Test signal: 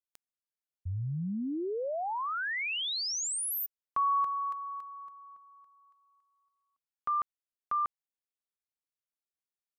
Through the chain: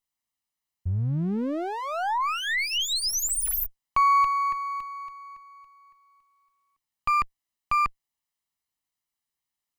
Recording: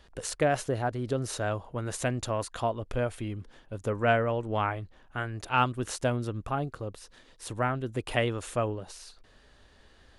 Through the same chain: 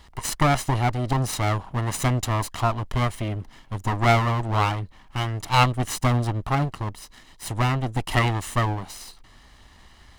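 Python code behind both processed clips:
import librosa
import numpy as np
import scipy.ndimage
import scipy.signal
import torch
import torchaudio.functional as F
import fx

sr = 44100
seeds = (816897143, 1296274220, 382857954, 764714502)

y = fx.lower_of_two(x, sr, delay_ms=0.99)
y = y * librosa.db_to_amplitude(8.5)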